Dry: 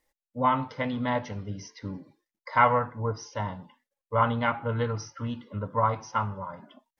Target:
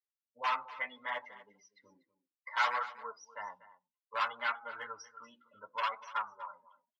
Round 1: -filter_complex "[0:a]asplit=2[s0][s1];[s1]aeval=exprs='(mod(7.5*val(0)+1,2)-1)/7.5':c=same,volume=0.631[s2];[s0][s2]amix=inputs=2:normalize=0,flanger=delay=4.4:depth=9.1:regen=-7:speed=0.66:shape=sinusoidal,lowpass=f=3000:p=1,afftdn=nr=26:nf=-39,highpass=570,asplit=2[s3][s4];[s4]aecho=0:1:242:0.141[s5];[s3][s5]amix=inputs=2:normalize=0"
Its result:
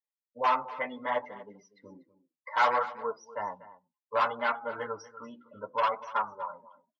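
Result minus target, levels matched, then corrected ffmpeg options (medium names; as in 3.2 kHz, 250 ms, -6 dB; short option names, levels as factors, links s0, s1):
500 Hz band +8.0 dB
-filter_complex "[0:a]asplit=2[s0][s1];[s1]aeval=exprs='(mod(7.5*val(0)+1,2)-1)/7.5':c=same,volume=0.631[s2];[s0][s2]amix=inputs=2:normalize=0,flanger=delay=4.4:depth=9.1:regen=-7:speed=0.66:shape=sinusoidal,lowpass=f=3000:p=1,afftdn=nr=26:nf=-39,highpass=1500,asplit=2[s3][s4];[s4]aecho=0:1:242:0.141[s5];[s3][s5]amix=inputs=2:normalize=0"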